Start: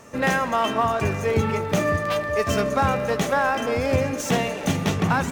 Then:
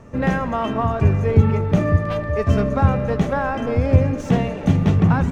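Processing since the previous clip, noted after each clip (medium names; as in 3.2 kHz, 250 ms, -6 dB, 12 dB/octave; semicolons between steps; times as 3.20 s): RIAA curve playback; trim -2 dB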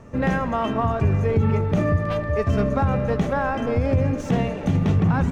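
peak limiter -10 dBFS, peak gain reduction 8.5 dB; trim -1 dB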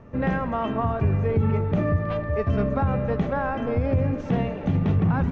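distance through air 200 m; trim -2 dB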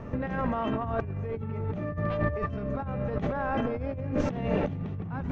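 compressor with a negative ratio -31 dBFS, ratio -1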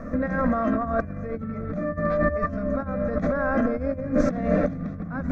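static phaser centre 590 Hz, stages 8; trim +8 dB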